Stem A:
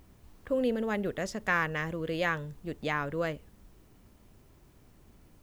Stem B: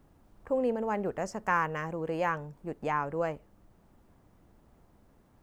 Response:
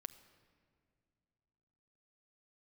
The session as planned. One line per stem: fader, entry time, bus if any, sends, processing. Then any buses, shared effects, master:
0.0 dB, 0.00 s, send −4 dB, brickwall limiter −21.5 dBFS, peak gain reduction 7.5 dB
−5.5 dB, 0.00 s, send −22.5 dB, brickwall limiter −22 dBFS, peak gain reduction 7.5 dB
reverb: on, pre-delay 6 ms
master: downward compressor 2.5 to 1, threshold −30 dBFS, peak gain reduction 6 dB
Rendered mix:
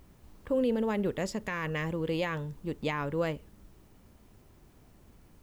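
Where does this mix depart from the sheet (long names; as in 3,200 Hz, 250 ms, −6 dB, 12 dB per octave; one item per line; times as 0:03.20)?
stem A: send off
master: missing downward compressor 2.5 to 1, threshold −30 dBFS, peak gain reduction 6 dB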